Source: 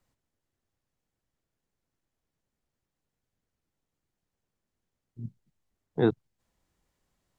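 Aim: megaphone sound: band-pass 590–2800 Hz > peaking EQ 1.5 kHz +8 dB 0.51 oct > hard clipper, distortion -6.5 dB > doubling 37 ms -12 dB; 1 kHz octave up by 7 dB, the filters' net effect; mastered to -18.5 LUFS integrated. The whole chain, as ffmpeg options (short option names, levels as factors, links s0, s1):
-filter_complex "[0:a]highpass=590,lowpass=2800,equalizer=f=1000:t=o:g=9,equalizer=f=1500:t=o:w=0.51:g=8,asoftclip=type=hard:threshold=0.0473,asplit=2[s0][s1];[s1]adelay=37,volume=0.251[s2];[s0][s2]amix=inputs=2:normalize=0,volume=8.41"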